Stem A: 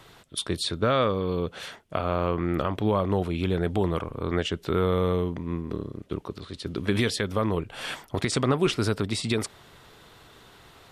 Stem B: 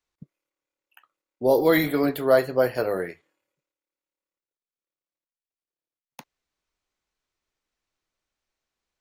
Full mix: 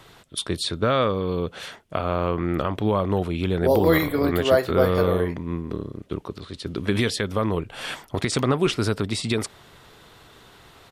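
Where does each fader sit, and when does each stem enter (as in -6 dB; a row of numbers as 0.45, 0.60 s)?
+2.0, -0.5 dB; 0.00, 2.20 s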